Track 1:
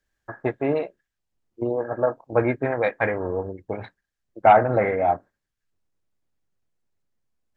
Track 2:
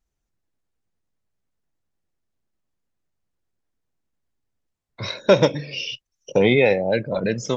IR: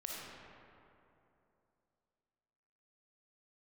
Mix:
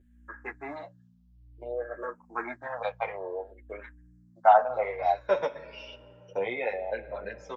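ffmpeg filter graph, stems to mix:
-filter_complex "[0:a]highpass=690,aeval=exprs='val(0)+0.00316*(sin(2*PI*60*n/s)+sin(2*PI*2*60*n/s)/2+sin(2*PI*3*60*n/s)/3+sin(2*PI*4*60*n/s)/4+sin(2*PI*5*60*n/s)/5)':channel_layout=same,asplit=2[link_01][link_02];[link_02]afreqshift=-0.56[link_03];[link_01][link_03]amix=inputs=2:normalize=1,volume=1.5dB[link_04];[1:a]acrossover=split=510 2100:gain=0.0708 1 0.126[link_05][link_06][link_07];[link_05][link_06][link_07]amix=inputs=3:normalize=0,volume=-5dB,asplit=2[link_08][link_09];[link_09]volume=-13.5dB[link_10];[2:a]atrim=start_sample=2205[link_11];[link_10][link_11]afir=irnorm=-1:irlink=0[link_12];[link_04][link_08][link_12]amix=inputs=3:normalize=0,asplit=2[link_13][link_14];[link_14]adelay=8.6,afreqshift=-0.91[link_15];[link_13][link_15]amix=inputs=2:normalize=1"

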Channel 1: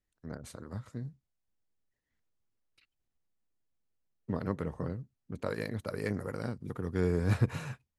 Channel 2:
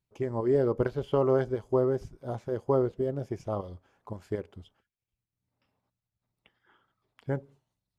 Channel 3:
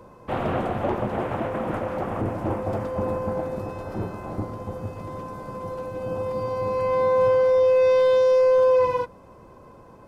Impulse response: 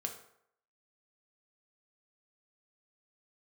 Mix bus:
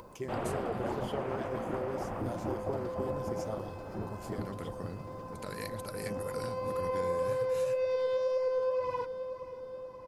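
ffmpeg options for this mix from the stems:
-filter_complex "[0:a]alimiter=limit=-22.5dB:level=0:latency=1:release=307,volume=-1dB[link_01];[1:a]volume=-1.5dB[link_02];[2:a]equalizer=frequency=4800:width_type=o:width=0.21:gain=6.5,volume=-4.5dB,asplit=2[link_03][link_04];[link_04]volume=-17.5dB[link_05];[link_01][link_02]amix=inputs=2:normalize=0,crystalizer=i=5:c=0,acompressor=threshold=-30dB:ratio=6,volume=0dB[link_06];[link_05]aecho=0:1:548|1096|1644|2192|2740|3288|3836|4384|4932:1|0.59|0.348|0.205|0.121|0.0715|0.0422|0.0249|0.0147[link_07];[link_03][link_06][link_07]amix=inputs=3:normalize=0,acompressor=mode=upward:threshold=-41dB:ratio=2.5,flanger=delay=0.9:depth=5:regen=74:speed=1.9:shape=triangular,acompressor=threshold=-28dB:ratio=6"

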